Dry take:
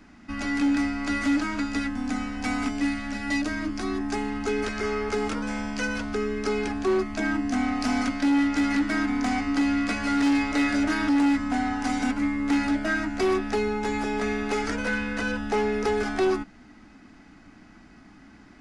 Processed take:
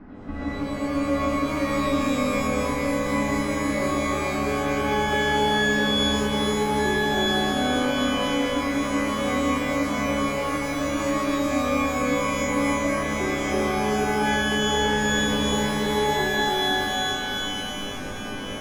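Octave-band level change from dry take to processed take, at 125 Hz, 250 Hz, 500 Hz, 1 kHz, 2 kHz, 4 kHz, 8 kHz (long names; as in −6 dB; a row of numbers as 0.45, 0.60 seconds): +8.0, −0.5, +4.5, +6.0, +3.5, +11.5, +8.0 decibels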